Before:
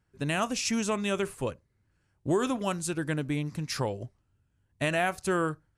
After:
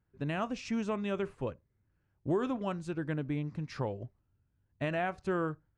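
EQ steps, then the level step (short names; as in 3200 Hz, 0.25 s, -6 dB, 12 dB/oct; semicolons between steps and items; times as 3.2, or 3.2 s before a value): tape spacing loss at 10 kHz 26 dB; -3.0 dB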